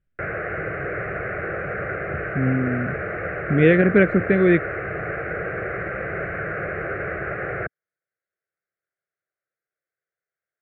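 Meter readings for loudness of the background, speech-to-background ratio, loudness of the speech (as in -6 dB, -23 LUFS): -28.0 LUFS, 9.0 dB, -19.0 LUFS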